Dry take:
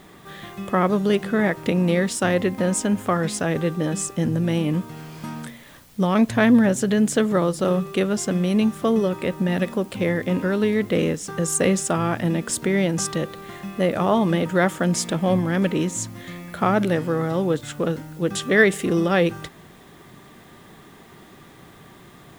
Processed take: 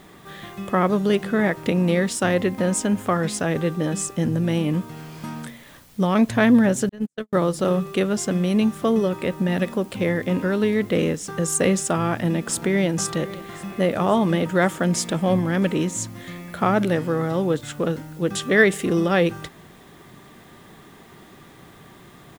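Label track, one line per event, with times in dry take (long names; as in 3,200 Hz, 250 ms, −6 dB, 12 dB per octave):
6.890000	7.330000	noise gate −16 dBFS, range −58 dB
11.930000	12.880000	delay throw 530 ms, feedback 70%, level −17.5 dB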